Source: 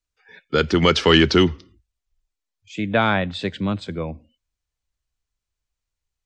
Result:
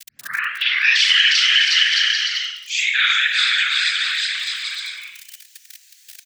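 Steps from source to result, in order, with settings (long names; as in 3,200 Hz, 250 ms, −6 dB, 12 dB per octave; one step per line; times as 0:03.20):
turntable start at the beginning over 1.05 s
on a send: bouncing-ball delay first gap 360 ms, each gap 0.7×, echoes 5
on the sum: four-comb reverb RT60 0.55 s, combs from 31 ms, DRR −8.5 dB
surface crackle 26 per second −39 dBFS
elliptic high-pass filter 1,700 Hz, stop band 50 dB
in parallel at +2 dB: brickwall limiter −9 dBFS, peak gain reduction 10.5 dB
on the sum: spectral tilt +2.5 dB per octave
random phases in short frames
multiband upward and downward compressor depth 70%
level −7.5 dB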